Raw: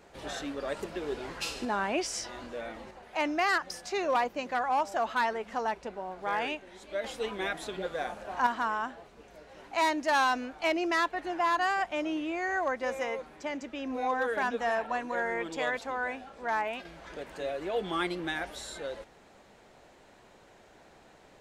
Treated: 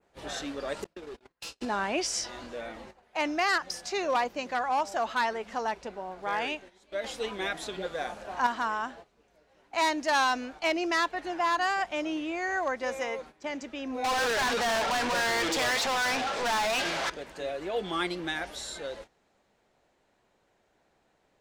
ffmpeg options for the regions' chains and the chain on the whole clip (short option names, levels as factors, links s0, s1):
-filter_complex "[0:a]asettb=1/sr,asplit=3[s0][s1][s2];[s0]atrim=end=0.844[s3];[s1]atrim=start=0.84:end=1.61,asetpts=PTS-STARTPTS,afade=t=in:d=0.004:c=qsin,afade=t=out:st=0.766:d=0.004:c=qsin,agate=range=0.00708:threshold=0.0158:ratio=16:release=100:detection=peak,aeval=exprs='0.0944*sin(PI/2*2.51*val(0)/0.0944)':c=same,acompressor=threshold=0.01:ratio=10:attack=3.2:release=140:knee=1:detection=peak[s4];[s2]atrim=start=1.606[s5];[s3][s4]acrossfade=d=0.004:c1=hsin:c2=qsin[s6];[s6][s5]acrossfade=d=0.004:c1=qsin:c2=hsin,asettb=1/sr,asplit=3[s7][s8][s9];[s7]atrim=end=14.044[s10];[s8]atrim=start=14.04:end=17.1,asetpts=PTS-STARTPTS,afade=t=in:d=0.004:c=qsin,afade=t=out:st=3.056:d=0.004:c=qsin,flanger=delay=4.7:depth=4.4:regen=83:speed=1.7:shape=sinusoidal,asplit=2[s11][s12];[s12]highpass=f=720:p=1,volume=63.1,asoftclip=type=tanh:threshold=0.075[s13];[s11][s13]amix=inputs=2:normalize=0,lowpass=f=6400:p=1,volume=0.501[s14];[s9]atrim=start=17.096[s15];[s10][s14]acrossfade=d=0.004:c1=hsin:c2=qsin[s16];[s16][s15]acrossfade=d=0.004:c1=qsin:c2=hsin,adynamicequalizer=threshold=0.00398:dfrequency=5300:dqfactor=0.78:tfrequency=5300:tqfactor=0.78:attack=5:release=100:ratio=0.375:range=2.5:mode=boostabove:tftype=bell,agate=range=0.224:threshold=0.00501:ratio=16:detection=peak"